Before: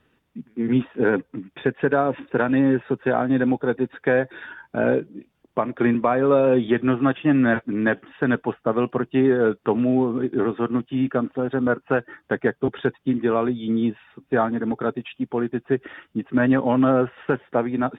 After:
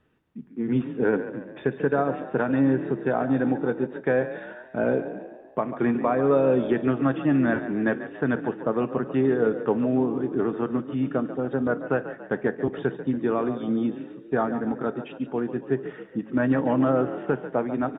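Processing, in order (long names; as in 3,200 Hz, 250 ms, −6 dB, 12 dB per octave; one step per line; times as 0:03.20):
high-shelf EQ 2,200 Hz −8 dB
echo with shifted repeats 141 ms, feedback 50%, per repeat +35 Hz, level −12 dB
on a send at −14.5 dB: convolution reverb RT60 0.50 s, pre-delay 5 ms
on the sum: level −3 dB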